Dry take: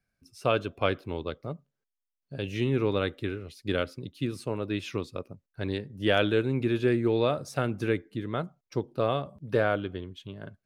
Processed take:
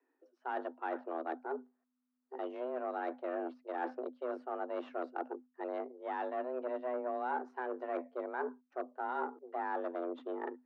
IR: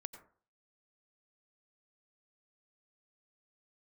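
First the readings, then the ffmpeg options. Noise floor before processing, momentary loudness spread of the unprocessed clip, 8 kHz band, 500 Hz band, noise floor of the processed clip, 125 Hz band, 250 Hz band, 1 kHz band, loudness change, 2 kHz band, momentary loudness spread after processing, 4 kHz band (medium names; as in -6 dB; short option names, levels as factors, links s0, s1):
under -85 dBFS, 14 LU, under -30 dB, -9.5 dB, -83 dBFS, under -40 dB, -13.0 dB, -2.0 dB, -10.0 dB, -11.0 dB, 5 LU, under -25 dB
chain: -af "areverse,acompressor=threshold=0.0126:ratio=16,areverse,aeval=exprs='0.0299*(cos(1*acos(clip(val(0)/0.0299,-1,1)))-cos(1*PI/2))+0.00422*(cos(5*acos(clip(val(0)/0.0299,-1,1)))-cos(5*PI/2))+0.00335*(cos(6*acos(clip(val(0)/0.0299,-1,1)))-cos(6*PI/2))+0.00299*(cos(7*acos(clip(val(0)/0.0299,-1,1)))-cos(7*PI/2))':c=same,afreqshift=250,lowpass=f=1300:t=q:w=2,volume=1.12"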